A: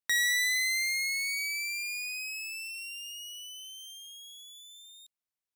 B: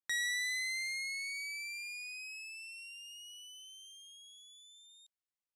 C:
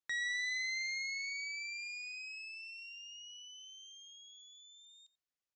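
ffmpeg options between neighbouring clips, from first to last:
-af "lowpass=f=11k:w=0.5412,lowpass=f=11k:w=1.3066,adynamicequalizer=threshold=0.00501:dfrequency=7300:dqfactor=1.1:tfrequency=7300:tqfactor=1.1:attack=5:release=100:ratio=0.375:range=1.5:mode=cutabove:tftype=bell,volume=-7.5dB"
-af "volume=34dB,asoftclip=hard,volume=-34dB,aecho=1:1:89:0.112,aresample=16000,aresample=44100"

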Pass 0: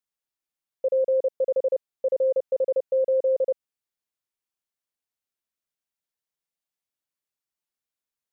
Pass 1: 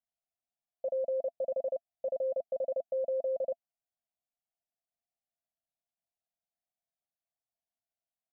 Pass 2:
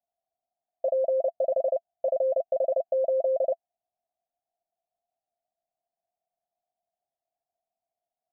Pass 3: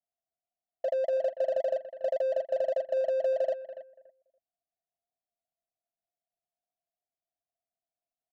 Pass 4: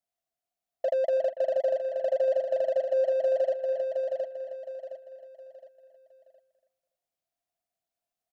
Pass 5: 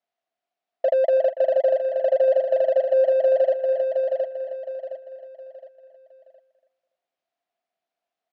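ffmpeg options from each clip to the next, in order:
-af "firequalizer=gain_entry='entry(250,0);entry(380,-24);entry(680,13);entry(980,-11)':delay=0.05:min_phase=1,volume=-4dB"
-af "lowpass=f=710:t=q:w=7"
-filter_complex "[0:a]asplit=2[a][b];[b]adelay=285,lowpass=f=810:p=1,volume=-12dB,asplit=2[c][d];[d]adelay=285,lowpass=f=810:p=1,volume=0.25,asplit=2[e][f];[f]adelay=285,lowpass=f=810:p=1,volume=0.25[g];[a][c][e][g]amix=inputs=4:normalize=0,adynamicsmooth=sensitivity=7.5:basefreq=710,volume=-3.5dB"
-filter_complex "[0:a]asplit=2[a][b];[b]aecho=0:1:715|1430|2145|2860:0.447|0.156|0.0547|0.0192[c];[a][c]amix=inputs=2:normalize=0,alimiter=limit=-20.5dB:level=0:latency=1:release=224,volume=3dB"
-af "highpass=260,lowpass=3.3k,volume=7dB"

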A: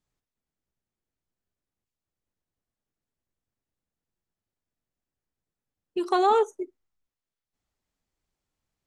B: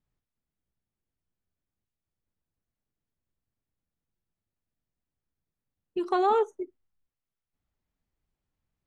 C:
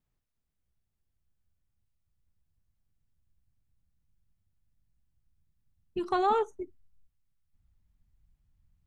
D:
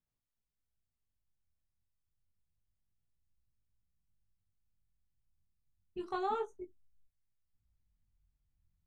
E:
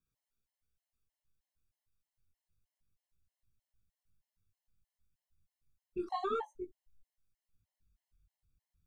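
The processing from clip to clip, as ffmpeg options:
-af "bass=f=250:g=6,treble=f=4k:g=-9,volume=-3dB"
-af "asubboost=boost=8:cutoff=140"
-af "flanger=delay=18.5:depth=5:speed=0.28,volume=-6dB"
-af "afftfilt=real='re*gt(sin(2*PI*3.2*pts/sr)*(1-2*mod(floor(b*sr/1024/550),2)),0)':imag='im*gt(sin(2*PI*3.2*pts/sr)*(1-2*mod(floor(b*sr/1024/550),2)),0)':win_size=1024:overlap=0.75,volume=3.5dB"

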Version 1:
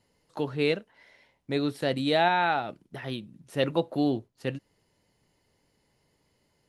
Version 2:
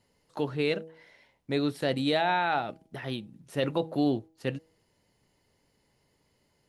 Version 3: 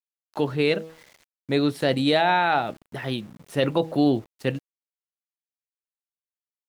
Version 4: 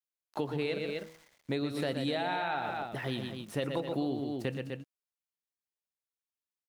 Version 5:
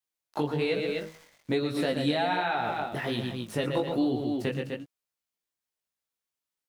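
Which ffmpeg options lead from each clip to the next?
-af "bandreject=f=160.9:t=h:w=4,bandreject=f=321.8:t=h:w=4,bandreject=f=482.7:t=h:w=4,bandreject=f=643.6:t=h:w=4,bandreject=f=804.5:t=h:w=4,alimiter=limit=-16dB:level=0:latency=1:release=11"
-af "aeval=exprs='val(0)*gte(abs(val(0)),0.00224)':c=same,volume=6dB"
-af "aecho=1:1:119.5|250.7:0.447|0.316,acompressor=threshold=-25dB:ratio=6,volume=-4.5dB"
-af "flanger=delay=16:depth=4.6:speed=1.2,volume=8dB"

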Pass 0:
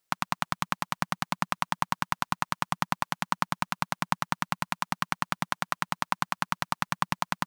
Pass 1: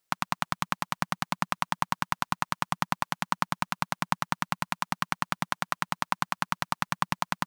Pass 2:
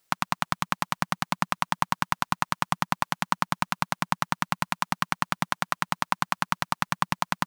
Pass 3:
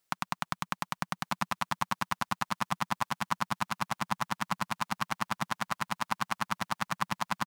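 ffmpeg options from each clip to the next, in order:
-af anull
-af "alimiter=limit=-11dB:level=0:latency=1:release=255,volume=7.5dB"
-af "aecho=1:1:1191|2382|3573:0.631|0.158|0.0394,volume=-7dB"

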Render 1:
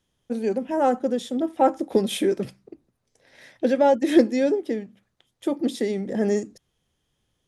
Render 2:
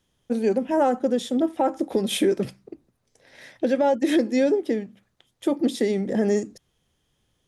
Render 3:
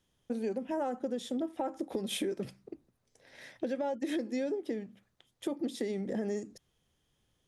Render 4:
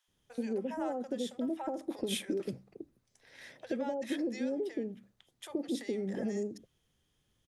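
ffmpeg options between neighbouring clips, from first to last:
-af "alimiter=limit=-15dB:level=0:latency=1:release=185,volume=3dB"
-af "acompressor=threshold=-28dB:ratio=3,volume=-5dB"
-filter_complex "[0:a]acrossover=split=730[a][b];[a]adelay=80[c];[c][b]amix=inputs=2:normalize=0"

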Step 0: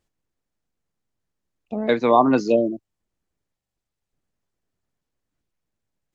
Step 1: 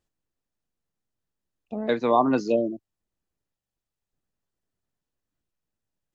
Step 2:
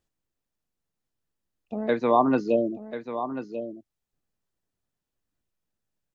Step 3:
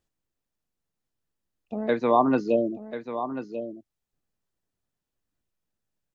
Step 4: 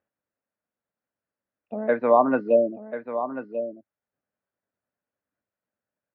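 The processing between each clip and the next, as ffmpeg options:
-af "bandreject=f=2.2k:w=15,volume=-4.5dB"
-filter_complex "[0:a]acrossover=split=3500[a][b];[b]acompressor=threshold=-56dB:ratio=4:attack=1:release=60[c];[a][c]amix=inputs=2:normalize=0,aecho=1:1:1040:0.299"
-af anull
-af "highpass=140,equalizer=f=150:t=q:w=4:g=-8,equalizer=f=350:t=q:w=4:g=-5,equalizer=f=580:t=q:w=4:g=7,equalizer=f=1.5k:t=q:w=4:g=5,lowpass=f=2.3k:w=0.5412,lowpass=f=2.3k:w=1.3066"

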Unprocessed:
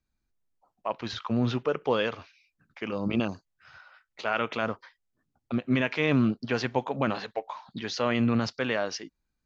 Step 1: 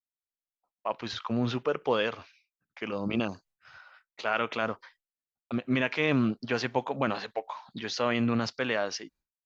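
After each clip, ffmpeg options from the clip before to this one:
-af "agate=range=-33dB:threshold=-55dB:ratio=3:detection=peak,lowshelf=f=260:g=-4.5"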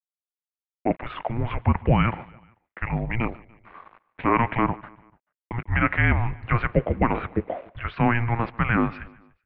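-af "aresample=16000,aeval=exprs='val(0)*gte(abs(val(0)),0.00299)':c=same,aresample=44100,aecho=1:1:146|292|438:0.075|0.0382|0.0195,highpass=f=300:t=q:w=0.5412,highpass=f=300:t=q:w=1.307,lowpass=f=2.7k:t=q:w=0.5176,lowpass=f=2.7k:t=q:w=0.7071,lowpass=f=2.7k:t=q:w=1.932,afreqshift=-350,volume=8.5dB"

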